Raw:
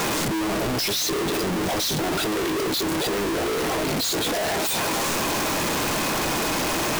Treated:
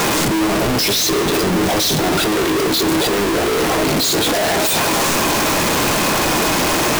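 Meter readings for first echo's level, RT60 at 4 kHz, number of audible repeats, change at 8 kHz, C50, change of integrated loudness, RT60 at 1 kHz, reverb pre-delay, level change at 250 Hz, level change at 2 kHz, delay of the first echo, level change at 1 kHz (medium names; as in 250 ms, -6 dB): no echo, 1.9 s, no echo, +7.5 dB, 13.0 dB, +8.0 dB, 2.4 s, 5 ms, +8.0 dB, +8.0 dB, no echo, +8.0 dB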